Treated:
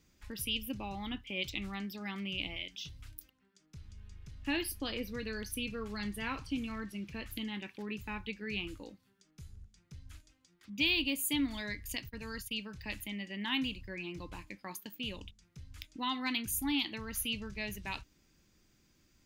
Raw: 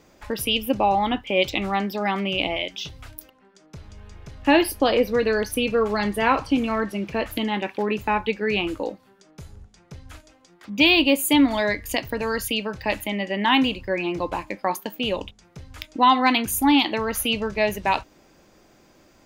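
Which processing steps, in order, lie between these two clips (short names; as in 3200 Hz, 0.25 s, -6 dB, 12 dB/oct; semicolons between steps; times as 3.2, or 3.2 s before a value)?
12.09–12.62 gate -27 dBFS, range -19 dB; passive tone stack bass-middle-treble 6-0-2; gain +5 dB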